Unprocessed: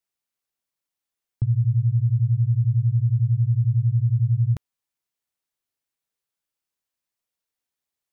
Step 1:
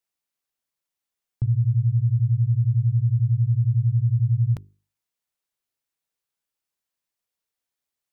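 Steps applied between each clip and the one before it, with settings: hum notches 50/100/150/200/250/300/350/400 Hz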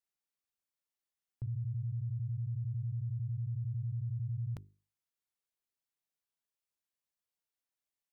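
peak limiter -24 dBFS, peak gain reduction 10 dB; trim -8 dB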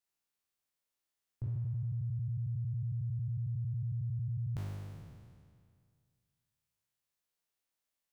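spectral sustain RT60 2.16 s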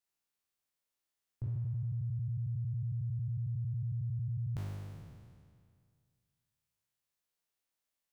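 no audible change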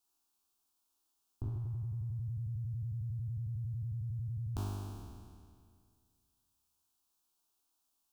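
static phaser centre 530 Hz, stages 6; trim +9 dB

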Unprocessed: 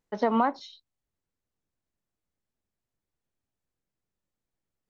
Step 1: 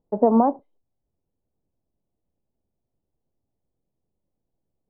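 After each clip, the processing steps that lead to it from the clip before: inverse Chebyshev low-pass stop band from 4.6 kHz, stop band 80 dB; trim +8.5 dB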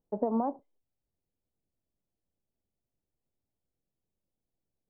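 compression, threshold -17 dBFS, peak gain reduction 6 dB; trim -8 dB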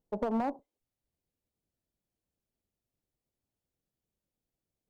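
one-sided clip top -28 dBFS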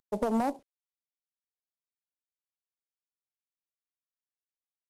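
CVSD coder 64 kbps; trim +3 dB

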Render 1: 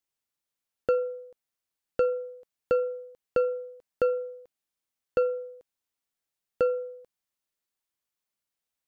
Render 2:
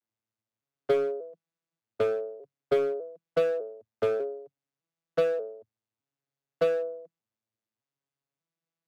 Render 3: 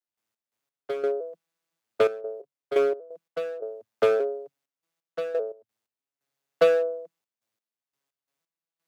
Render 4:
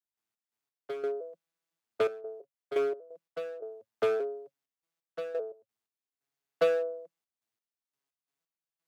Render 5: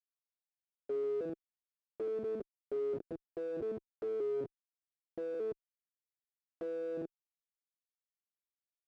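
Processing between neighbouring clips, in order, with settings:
vocoder on a broken chord major triad, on A2, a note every 599 ms; in parallel at -5 dB: wavefolder -30 dBFS
high-pass 450 Hz 6 dB/octave; trance gate ".x.x..xxxxxx.x." 87 bpm -12 dB; trim +8.5 dB
band-stop 550 Hz, Q 15; trim -6 dB
Schmitt trigger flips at -43.5 dBFS; band-pass filter 360 Hz, Q 2.8; trim +5 dB

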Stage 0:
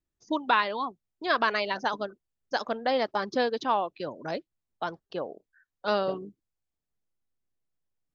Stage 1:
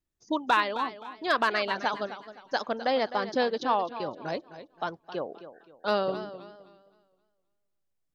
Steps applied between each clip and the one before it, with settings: overload inside the chain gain 13.5 dB; modulated delay 261 ms, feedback 33%, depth 99 cents, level -13 dB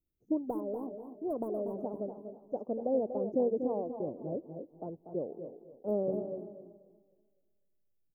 inverse Chebyshev band-stop 1.9–4.3 kHz, stop band 80 dB; feedback delay 240 ms, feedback 18%, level -9 dB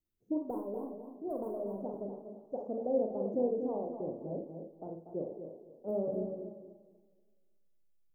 Schroeder reverb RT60 0.39 s, combs from 33 ms, DRR 3 dB; trim -3.5 dB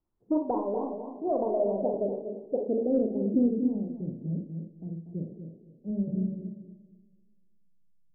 saturation -21.5 dBFS, distortion -24 dB; low-pass sweep 950 Hz -> 180 Hz, 1.15–4.11 s; trim +6.5 dB

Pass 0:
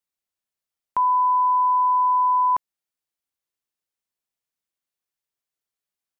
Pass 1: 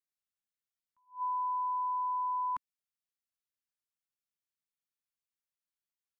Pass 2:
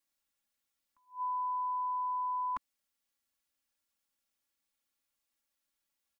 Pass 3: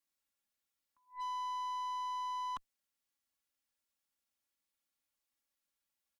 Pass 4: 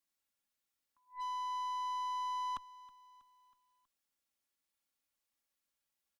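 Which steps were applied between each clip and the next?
high-order bell 540 Hz -12.5 dB; attacks held to a fixed rise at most 240 dB/s; trim -9 dB
comb 3.6 ms, depth 81%; in parallel at +1 dB: peak limiter -39.5 dBFS, peak gain reduction 11 dB
Chebyshev shaper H 3 -32 dB, 7 -43 dB, 8 -25 dB, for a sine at -25.5 dBFS; overload inside the chain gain 34.5 dB; trim -2.5 dB
feedback delay 321 ms, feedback 53%, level -22 dB

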